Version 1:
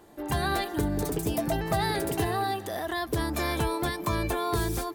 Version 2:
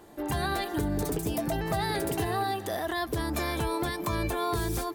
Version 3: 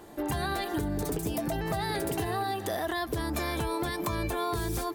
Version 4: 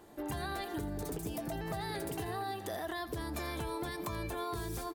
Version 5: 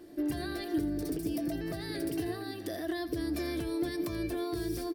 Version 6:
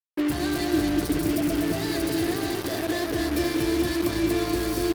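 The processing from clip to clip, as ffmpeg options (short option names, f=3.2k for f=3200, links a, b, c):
-af "alimiter=limit=-22.5dB:level=0:latency=1:release=182,volume=2dB"
-af "acompressor=threshold=-31dB:ratio=4,volume=3dB"
-af "aecho=1:1:84:0.178,volume=-7.5dB"
-af "superequalizer=6b=3.16:9b=0.282:10b=0.501:14b=1.78:15b=0.631"
-filter_complex "[0:a]asplit=2[a][b];[b]aecho=0:1:240|432|585.6|708.5|806.8:0.631|0.398|0.251|0.158|0.1[c];[a][c]amix=inputs=2:normalize=0,acrusher=bits=5:mix=0:aa=0.5,volume=7dB"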